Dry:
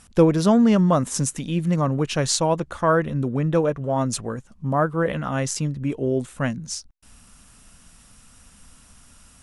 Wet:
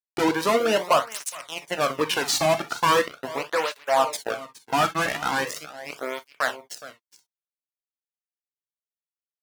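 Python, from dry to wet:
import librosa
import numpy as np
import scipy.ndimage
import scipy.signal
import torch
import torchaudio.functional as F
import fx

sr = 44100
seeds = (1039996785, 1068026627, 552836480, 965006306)

y = scipy.signal.sosfilt(scipy.signal.butter(2, 690.0, 'highpass', fs=sr, output='sos'), x)
y = fx.peak_eq(y, sr, hz=8200.0, db=-12.0, octaves=1.6)
y = fx.quant_dither(y, sr, seeds[0], bits=10, dither='triangular')
y = fx.fuzz(y, sr, gain_db=29.0, gate_db=-35.0)
y = y + 10.0 ** (-16.5 / 20.0) * np.pad(y, (int(417 * sr / 1000.0), 0))[:len(y)]
y = fx.rev_gated(y, sr, seeds[1], gate_ms=80, shape='flat', drr_db=8.0)
y = fx.flanger_cancel(y, sr, hz=0.4, depth_ms=2.2)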